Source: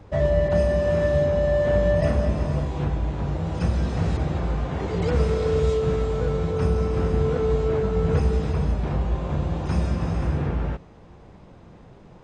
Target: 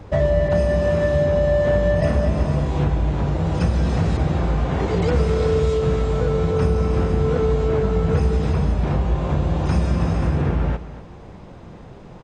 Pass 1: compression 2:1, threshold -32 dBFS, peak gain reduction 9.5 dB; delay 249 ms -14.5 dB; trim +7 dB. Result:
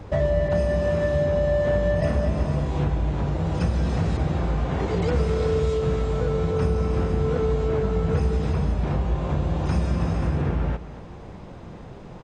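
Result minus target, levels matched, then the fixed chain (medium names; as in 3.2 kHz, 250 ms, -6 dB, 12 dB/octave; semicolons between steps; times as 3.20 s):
compression: peak gain reduction +4 dB
compression 2:1, threshold -24.5 dBFS, peak gain reduction 5.5 dB; delay 249 ms -14.5 dB; trim +7 dB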